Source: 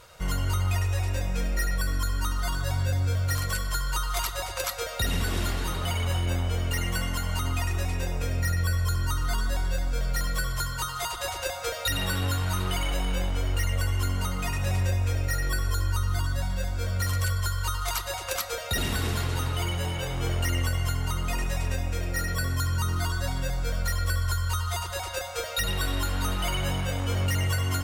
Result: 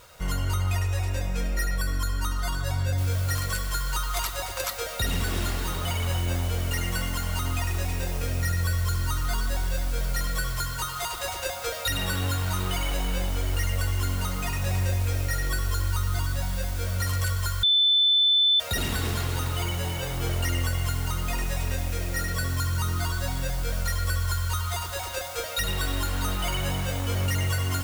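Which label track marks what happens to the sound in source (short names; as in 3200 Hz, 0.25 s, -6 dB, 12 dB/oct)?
2.980000	2.980000	noise floor step -59 dB -42 dB
17.630000	18.600000	bleep 3520 Hz -17 dBFS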